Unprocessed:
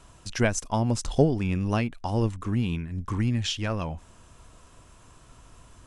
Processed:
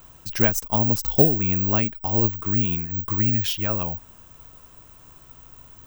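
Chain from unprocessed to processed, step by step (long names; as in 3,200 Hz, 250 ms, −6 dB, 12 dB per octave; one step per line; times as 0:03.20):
bad sample-rate conversion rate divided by 2×, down none, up zero stuff
level +1 dB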